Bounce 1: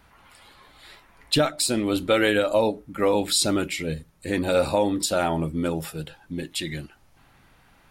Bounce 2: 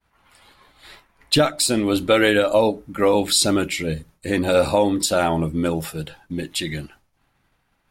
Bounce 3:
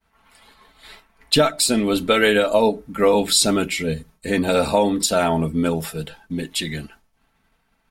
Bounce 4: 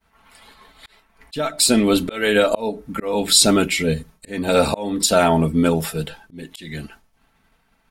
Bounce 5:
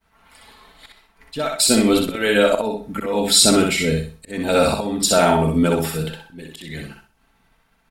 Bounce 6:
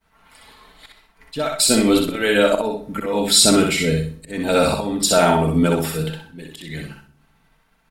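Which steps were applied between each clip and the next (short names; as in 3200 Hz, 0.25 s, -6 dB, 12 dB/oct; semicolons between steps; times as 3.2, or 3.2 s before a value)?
expander -46 dBFS; gain +4 dB
comb 4.5 ms, depth 53%
auto swell 0.353 s; gain +3.5 dB
feedback echo 63 ms, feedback 30%, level -3.5 dB; gain -1 dB
reverb RT60 0.75 s, pre-delay 6 ms, DRR 14.5 dB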